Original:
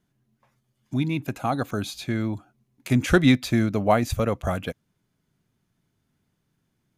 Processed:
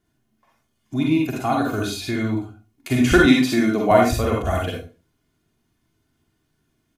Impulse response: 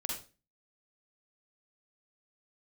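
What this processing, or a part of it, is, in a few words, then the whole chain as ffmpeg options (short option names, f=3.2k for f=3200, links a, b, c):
microphone above a desk: -filter_complex "[0:a]aecho=1:1:2.8:0.51[a];[1:a]atrim=start_sample=2205[b];[a][b]afir=irnorm=-1:irlink=0,asettb=1/sr,asplit=3[c][d][e];[c]atrim=end=3.264[f];[d]atrim=start=3.26:end=3.91,asetpts=PTS-STARTPTS,afade=t=in:d=0.004:c=qsin,afade=t=out:st=0.646:d=0.004:c=qsin,highpass=f=150:w=0.5412,highpass=f=150:w=1.3066[g];[e]atrim=start=3.906[h];[f][g]acrossfade=d=0.004:c1=hsin:c2=qsin[i];[i][h]acrossfade=d=0.004:c1=qsin:c2=hsin,volume=2.5dB"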